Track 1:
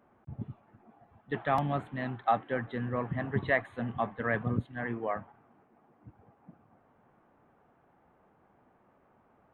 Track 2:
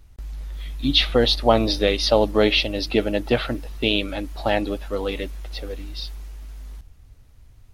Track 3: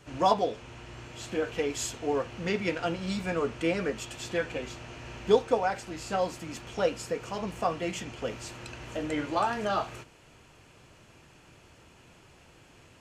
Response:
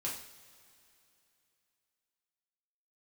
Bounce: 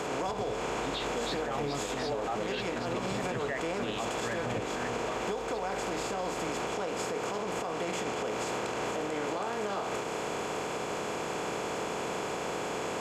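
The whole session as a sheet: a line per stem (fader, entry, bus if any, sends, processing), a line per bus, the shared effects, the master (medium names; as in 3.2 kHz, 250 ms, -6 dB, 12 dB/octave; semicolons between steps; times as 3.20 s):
-2.5 dB, 0.00 s, no send, none
-16.0 dB, 0.00 s, no send, none
-2.5 dB, 0.00 s, no send, spectral levelling over time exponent 0.4; compression 10:1, threshold -25 dBFS, peak gain reduction 12.5 dB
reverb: none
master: bass shelf 64 Hz -7.5 dB; peak limiter -24 dBFS, peak gain reduction 9.5 dB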